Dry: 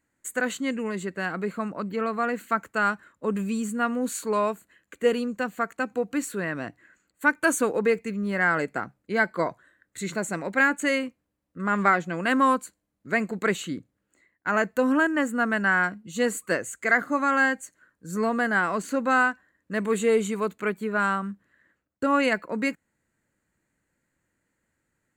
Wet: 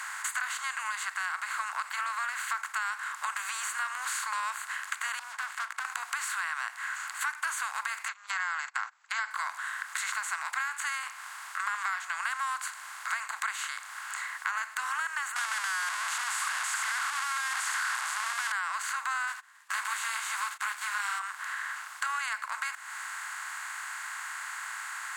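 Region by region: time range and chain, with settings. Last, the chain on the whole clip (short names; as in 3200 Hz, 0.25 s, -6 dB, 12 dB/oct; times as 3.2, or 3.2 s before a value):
5.19–5.85 RIAA curve playback + sample leveller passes 2 + flipped gate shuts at -26 dBFS, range -26 dB
8.08–9.31 brick-wall FIR band-pass 490–7900 Hz + gate -47 dBFS, range -43 dB
15.36–18.52 infinite clipping + LPF 11000 Hz 24 dB/oct
19.27–21.18 spectral whitening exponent 0.6 + gate -49 dBFS, range -48 dB + ensemble effect
whole clip: per-bin compression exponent 0.4; steep high-pass 890 Hz 48 dB/oct; compressor 4:1, threshold -32 dBFS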